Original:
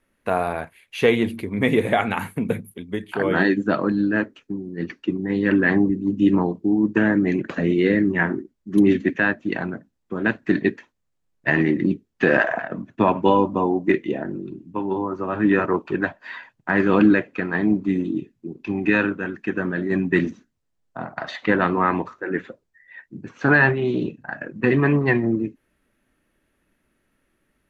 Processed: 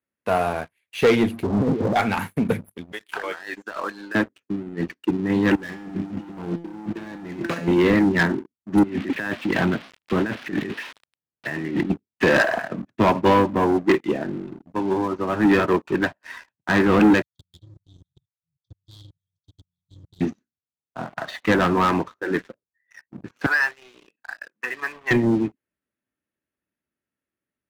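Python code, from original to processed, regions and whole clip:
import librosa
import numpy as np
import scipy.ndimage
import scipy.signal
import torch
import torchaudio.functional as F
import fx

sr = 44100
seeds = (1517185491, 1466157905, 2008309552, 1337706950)

y = fx.chain(x, sr, fx.delta_mod(bps=16000, step_db=-22.5),
    fx.lowpass(hz=1000.0, slope=24),
    fx.over_compress(threshold_db=-21.0, ratio=-0.5), at=(1.43, 1.96))
y = fx.chain(y, sr, fx.highpass(hz=860.0, slope=12),
    fx.over_compress(threshold_db=-31.0, ratio=-1.0), at=(2.92, 4.15))
y = fx.chain(y, sr, fx.leveller(passes=3),
    fx.over_compress(threshold_db=-20.0, ratio=-1.0),
    fx.comb_fb(f0_hz=170.0, decay_s=0.68, harmonics='all', damping=0.0, mix_pct=80), at=(5.55, 7.68))
y = fx.chain(y, sr, fx.crossing_spikes(level_db=-19.5),
    fx.lowpass(hz=3100.0, slope=24),
    fx.over_compress(threshold_db=-26.0, ratio=-1.0), at=(8.83, 11.9))
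y = fx.chain(y, sr, fx.level_steps(step_db=23),
    fx.tube_stage(drive_db=15.0, bias=0.4),
    fx.brickwall_bandstop(low_hz=150.0, high_hz=3200.0), at=(17.22, 20.21))
y = fx.chain(y, sr, fx.highpass(hz=1300.0, slope=12),
    fx.air_absorb(metres=320.0),
    fx.band_squash(depth_pct=40), at=(23.46, 25.11))
y = scipy.signal.sosfilt(scipy.signal.butter(4, 65.0, 'highpass', fs=sr, output='sos'), y)
y = fx.leveller(y, sr, passes=3)
y = fx.upward_expand(y, sr, threshold_db=-24.0, expansion=1.5)
y = F.gain(torch.from_numpy(y), -5.0).numpy()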